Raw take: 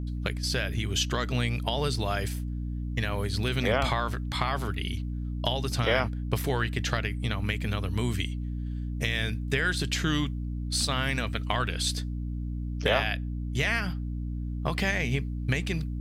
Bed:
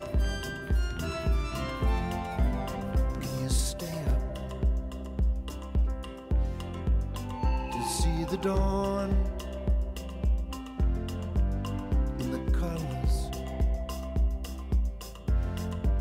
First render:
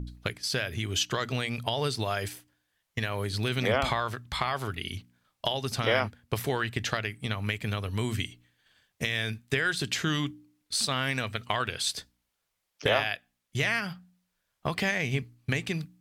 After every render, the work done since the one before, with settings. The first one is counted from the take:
hum removal 60 Hz, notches 5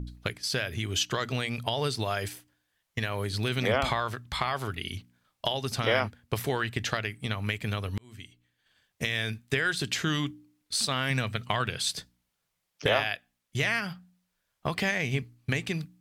0:07.98–0:09.06: fade in
0:11.10–0:12.86: parametric band 150 Hz +9 dB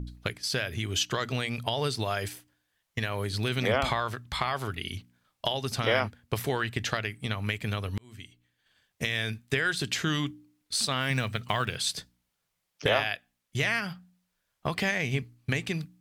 0:11.00–0:11.80: one scale factor per block 7 bits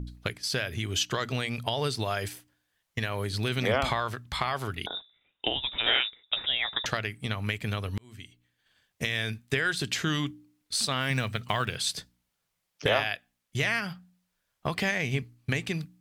0:04.86–0:06.86: voice inversion scrambler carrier 3,700 Hz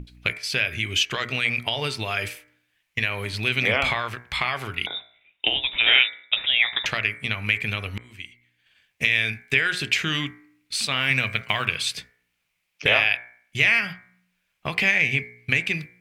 parametric band 2,400 Hz +15 dB 0.72 octaves
hum removal 60.25 Hz, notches 39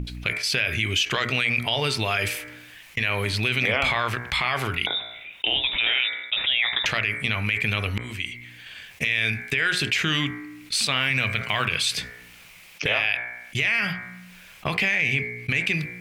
brickwall limiter −13 dBFS, peak gain reduction 9.5 dB
envelope flattener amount 50%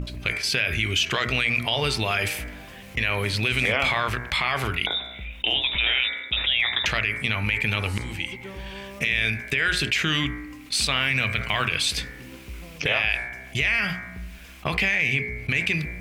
mix in bed −11.5 dB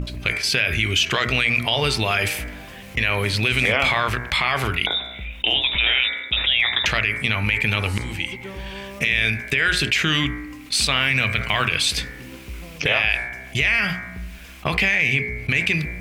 level +3.5 dB

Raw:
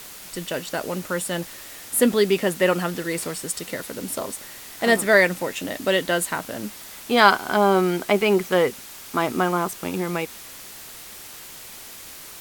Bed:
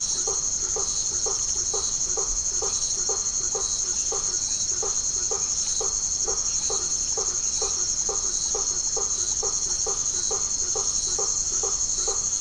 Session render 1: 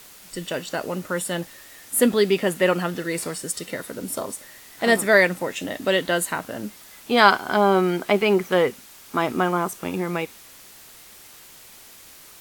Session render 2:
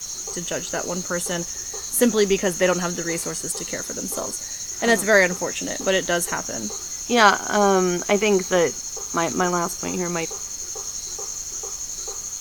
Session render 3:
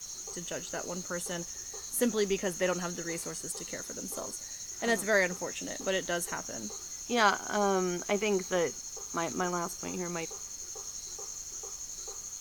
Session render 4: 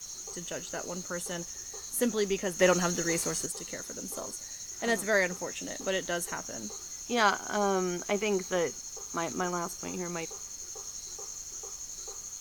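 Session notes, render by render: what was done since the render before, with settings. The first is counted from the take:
noise reduction from a noise print 6 dB
mix in bed −6 dB
level −10.5 dB
0:02.59–0:03.46: clip gain +6.5 dB

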